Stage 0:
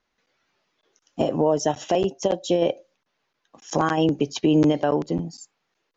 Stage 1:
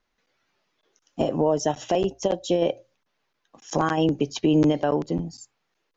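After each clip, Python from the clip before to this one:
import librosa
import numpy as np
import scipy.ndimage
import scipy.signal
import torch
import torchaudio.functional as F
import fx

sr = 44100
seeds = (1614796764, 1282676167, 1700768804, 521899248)

y = fx.low_shelf(x, sr, hz=62.0, db=7.5)
y = fx.hum_notches(y, sr, base_hz=60, count=2)
y = F.gain(torch.from_numpy(y), -1.5).numpy()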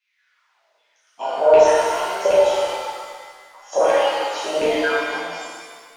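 y = fx.filter_lfo_highpass(x, sr, shape='saw_down', hz=1.3, low_hz=480.0, high_hz=2600.0, q=6.7)
y = fx.rev_shimmer(y, sr, seeds[0], rt60_s=1.7, semitones=7, shimmer_db=-8, drr_db=-10.0)
y = F.gain(torch.from_numpy(y), -8.0).numpy()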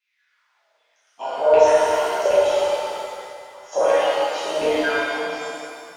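y = fx.rev_plate(x, sr, seeds[1], rt60_s=2.6, hf_ratio=0.8, predelay_ms=0, drr_db=2.5)
y = F.gain(torch.from_numpy(y), -3.0).numpy()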